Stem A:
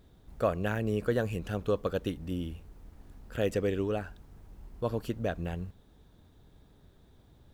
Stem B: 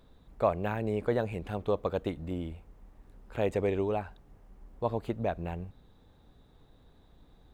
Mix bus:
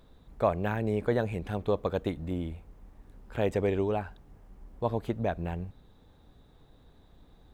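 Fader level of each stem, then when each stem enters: -14.5, +1.5 dB; 0.00, 0.00 s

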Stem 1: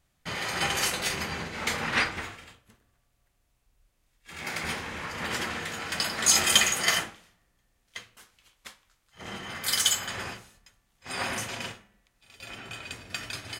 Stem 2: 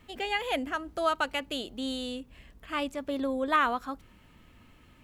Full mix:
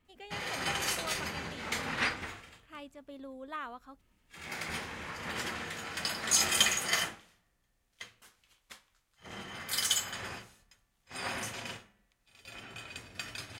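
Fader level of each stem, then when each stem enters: -5.5, -15.5 dB; 0.05, 0.00 s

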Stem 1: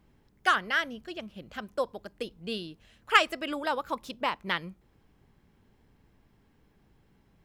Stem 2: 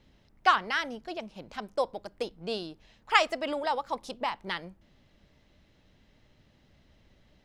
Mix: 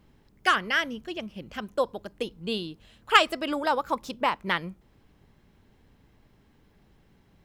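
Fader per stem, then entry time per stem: +3.0, -7.5 dB; 0.00, 0.00 s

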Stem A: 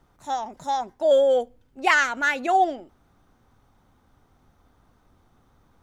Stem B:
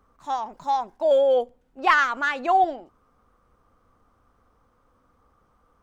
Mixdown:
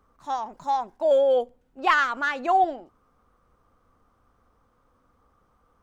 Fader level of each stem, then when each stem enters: -20.0, -1.5 dB; 0.00, 0.00 s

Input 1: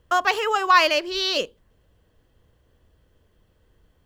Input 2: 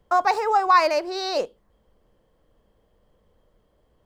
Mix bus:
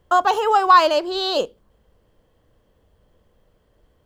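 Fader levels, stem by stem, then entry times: -3.0, +1.0 dB; 0.00, 0.00 s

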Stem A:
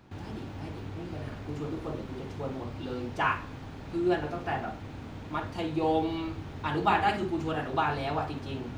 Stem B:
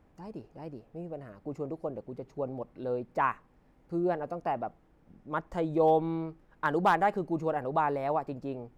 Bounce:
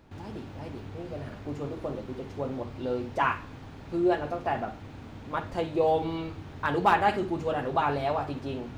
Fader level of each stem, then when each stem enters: -2.0, +0.5 dB; 0.00, 0.00 s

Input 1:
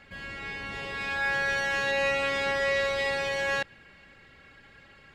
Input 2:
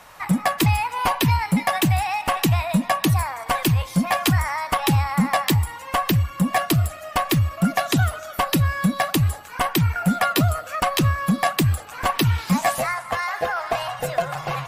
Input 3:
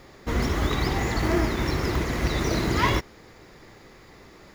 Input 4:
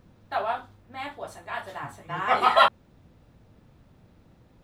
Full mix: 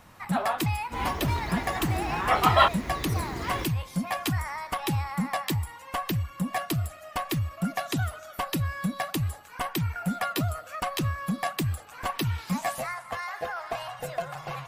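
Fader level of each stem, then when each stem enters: off, -9.0 dB, -10.5 dB, -1.5 dB; off, 0.00 s, 0.65 s, 0.00 s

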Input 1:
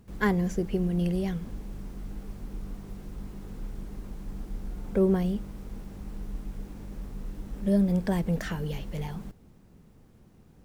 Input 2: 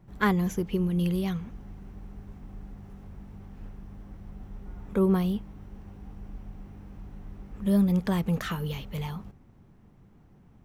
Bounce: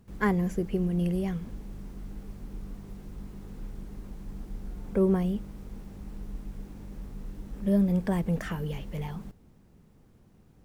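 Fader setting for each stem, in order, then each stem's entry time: -3.0, -12.5 dB; 0.00, 0.00 s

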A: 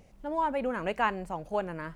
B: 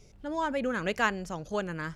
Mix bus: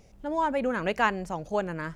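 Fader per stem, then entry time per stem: -1.0, -5.0 dB; 0.00, 0.00 s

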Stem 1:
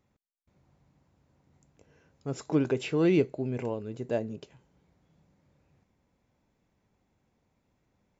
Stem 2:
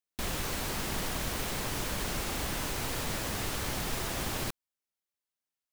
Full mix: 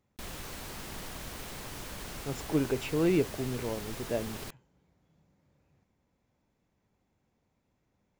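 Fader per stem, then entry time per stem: -2.5, -8.0 dB; 0.00, 0.00 s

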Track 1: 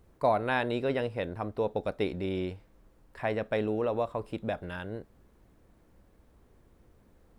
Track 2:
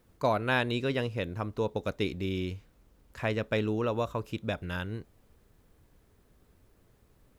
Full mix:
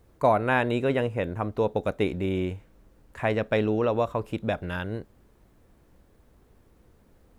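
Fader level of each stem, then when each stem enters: +1.5, -3.0 dB; 0.00, 0.00 s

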